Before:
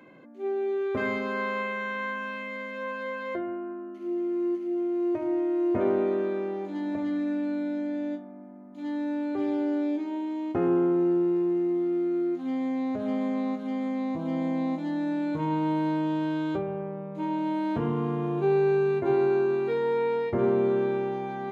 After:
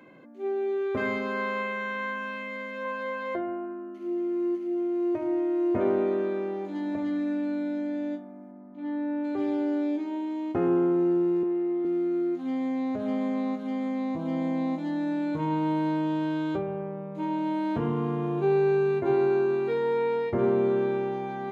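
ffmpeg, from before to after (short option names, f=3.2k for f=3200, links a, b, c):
-filter_complex "[0:a]asettb=1/sr,asplit=3[a][b][c];[a]atrim=end=2.854[d];[b]atrim=start=2.85:end=3.66,asetpts=PTS-STARTPTS,afade=t=in:d=0.004:c=qsin,afade=t=out:st=0.806:d=0.004:c=qsin,equalizer=f=820:t=o:w=0.45:g=8.5[e];[c]atrim=start=3.656[f];[d][e]acrossfade=d=0.004:c1=hsin:c2=qsin[g];[g][f]acrossfade=d=0.004:c1=qsin:c2=hsin,asplit=3[h][i][j];[h]afade=t=out:st=8.51:d=0.02[k];[i]lowpass=2.2k,afade=t=in:st=8.51:d=0.02,afade=t=out:st=9.23:d=0.02[l];[j]afade=t=in:st=9.23:d=0.02[m];[k][l][m]amix=inputs=3:normalize=0,asettb=1/sr,asplit=3[n][o][p];[n]atrim=end=11.434[q];[o]atrim=start=11.43:end=11.85,asetpts=PTS-STARTPTS,afade=t=in:d=0.004:c=qsin,afade=t=out:st=0.416:d=0.004:c=qsin,highpass=280,lowpass=3.1k[r];[p]atrim=start=11.846[s];[q][r]acrossfade=d=0.004:c1=hsin:c2=qsin[t];[t][s]acrossfade=d=0.004:c1=qsin:c2=hsin"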